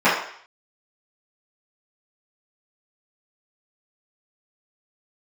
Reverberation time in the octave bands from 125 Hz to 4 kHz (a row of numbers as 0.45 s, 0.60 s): 0.35 s, 0.45 s, 0.55 s, 0.60 s, 0.65 s, 0.65 s